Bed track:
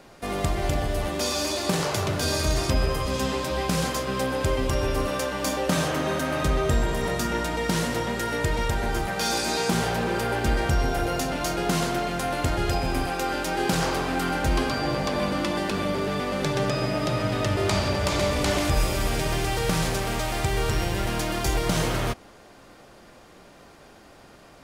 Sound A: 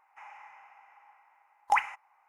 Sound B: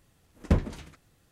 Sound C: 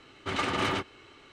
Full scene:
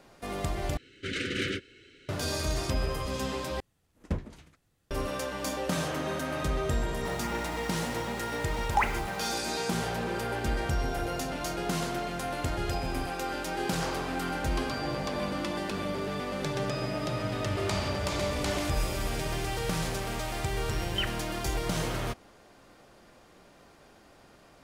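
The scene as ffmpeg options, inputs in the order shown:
-filter_complex "[3:a]asplit=2[a][b];[1:a]asplit=2[c][d];[0:a]volume=-6.5dB[e];[a]asuperstop=centerf=870:order=12:qfactor=0.98[f];[c]aeval=exprs='val(0)+0.5*0.015*sgn(val(0))':c=same[g];[d]lowpass=f=3.3k:t=q:w=0.5098,lowpass=f=3.3k:t=q:w=0.6013,lowpass=f=3.3k:t=q:w=0.9,lowpass=f=3.3k:t=q:w=2.563,afreqshift=-3900[h];[e]asplit=3[i][j][k];[i]atrim=end=0.774[l];[f]atrim=end=1.32,asetpts=PTS-STARTPTS,volume=-1dB[m];[j]atrim=start=2.086:end=3.604[n];[2:a]atrim=end=1.31,asetpts=PTS-STARTPTS,volume=-8.5dB[o];[k]atrim=start=4.906[p];[g]atrim=end=2.28,asetpts=PTS-STARTPTS,volume=-2dB,afade=t=in:d=0.004:c=hsin,afade=t=out:st=2.276:d=0.004:c=hsin,adelay=7050[q];[b]atrim=end=1.32,asetpts=PTS-STARTPTS,volume=-14.5dB,afade=t=in:d=0.004:c=hsin,afade=t=out:st=1.316:d=0.004:c=hsin,adelay=17190[r];[h]atrim=end=2.28,asetpts=PTS-STARTPTS,volume=-8dB,afade=t=in:d=0.004:c=hsin,afade=t=out:st=2.276:d=0.004:c=hsin,adelay=19260[s];[l][m]acrossfade=d=0.004:c1=hsin:c2=hsin[t];[t][n]acrossfade=d=0.004:c1=hsin:c2=hsin[u];[u][o]acrossfade=d=0.004:c1=hsin:c2=hsin[v];[v][p]acrossfade=d=0.004:c1=hsin:c2=hsin[w];[w][q][r][s]amix=inputs=4:normalize=0"

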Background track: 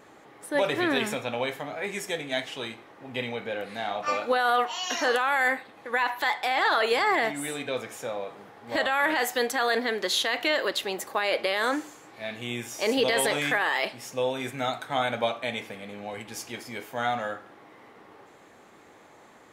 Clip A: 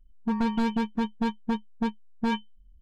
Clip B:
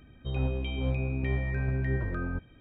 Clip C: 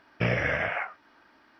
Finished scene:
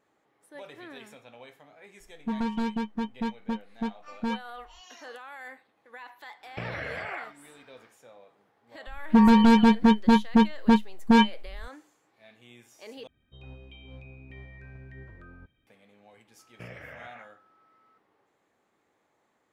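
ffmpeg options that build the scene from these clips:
-filter_complex "[1:a]asplit=2[a][b];[3:a]asplit=2[c][d];[0:a]volume=-19.5dB[e];[c]acompressor=threshold=-31dB:ratio=6:attack=3.2:release=140:knee=1:detection=peak[f];[b]alimiter=level_in=24.5dB:limit=-1dB:release=50:level=0:latency=1[g];[2:a]highshelf=f=2k:g=10.5[h];[d]aeval=exprs='val(0)+0.00631*sin(2*PI*1300*n/s)':c=same[i];[e]asplit=2[j][k];[j]atrim=end=13.074[l];[h]atrim=end=2.6,asetpts=PTS-STARTPTS,volume=-17.5dB[m];[k]atrim=start=15.666[n];[a]atrim=end=2.81,asetpts=PTS-STARTPTS,volume=-3.5dB,afade=t=in:d=0.004:c=hsin,afade=t=out:st=2.806:d=0.004:c=hsin,adelay=2000[o];[f]atrim=end=1.59,asetpts=PTS-STARTPTS,volume=-1dB,afade=t=in:d=0.1,afade=t=out:st=1.49:d=0.1,adelay=6370[p];[g]atrim=end=2.81,asetpts=PTS-STARTPTS,volume=-9.5dB,afade=t=in:d=0.004:c=hsin,afade=t=out:st=2.806:d=0.004:c=hsin,adelay=8870[q];[i]atrim=end=1.59,asetpts=PTS-STARTPTS,volume=-18dB,afade=t=in:d=0.004:c=hsin,afade=t=out:st=1.586:d=0.004:c=hsin,adelay=16390[r];[l][m]acrossfade=d=0.004:c1=hsin:c2=hsin[s];[s][n]acrossfade=d=0.004:c1=hsin:c2=hsin[t];[t][o][p][q][r]amix=inputs=5:normalize=0"

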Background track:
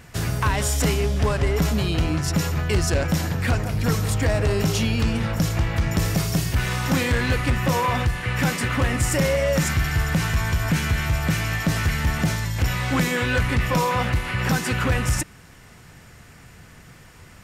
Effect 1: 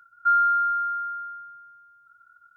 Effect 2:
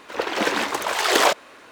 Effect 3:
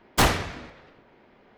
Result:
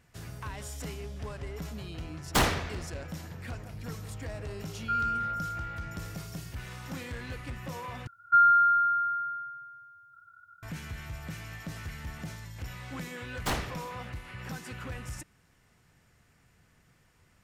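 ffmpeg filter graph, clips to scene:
-filter_complex "[3:a]asplit=2[a][b];[1:a]asplit=2[c][d];[0:a]volume=-18dB[e];[a]asoftclip=type=hard:threshold=-17dB[f];[d]equalizer=f=99:t=o:w=1.7:g=12[g];[e]asplit=2[h][i];[h]atrim=end=8.074[j];[g]atrim=end=2.56[k];[i]atrim=start=10.626[l];[f]atrim=end=1.57,asetpts=PTS-STARTPTS,volume=-3dB,afade=t=in:d=0.004:c=hsin,afade=t=out:st=1.566:d=0.004:c=hsin,adelay=2170[m];[c]atrim=end=2.56,asetpts=PTS-STARTPTS,volume=-10dB,afade=t=in:d=0.004:c=hsin,afade=t=out:st=2.556:d=0.004:c=hsin,adelay=4630[n];[b]atrim=end=1.57,asetpts=PTS-STARTPTS,volume=-11.5dB,afade=t=in:d=0.004:c=hsin,afade=t=out:st=1.566:d=0.004:c=hsin,adelay=13280[o];[j][k]acrossfade=d=0.004:c1=hsin:c2=hsin[p];[p][l]acrossfade=d=0.004:c1=hsin:c2=hsin[q];[q][m][n][o]amix=inputs=4:normalize=0"

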